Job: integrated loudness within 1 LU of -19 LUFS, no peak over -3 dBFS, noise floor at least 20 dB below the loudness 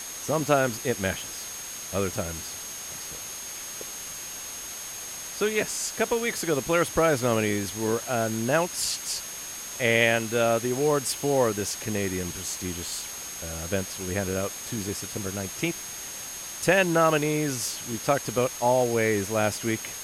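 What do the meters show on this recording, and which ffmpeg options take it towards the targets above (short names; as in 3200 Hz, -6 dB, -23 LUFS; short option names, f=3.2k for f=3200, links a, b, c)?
steady tone 6500 Hz; tone level -38 dBFS; noise floor -38 dBFS; noise floor target -47 dBFS; loudness -27.0 LUFS; peak -6.5 dBFS; loudness target -19.0 LUFS
-> -af "bandreject=f=6.5k:w=30"
-af "afftdn=nr=9:nf=-38"
-af "volume=8dB,alimiter=limit=-3dB:level=0:latency=1"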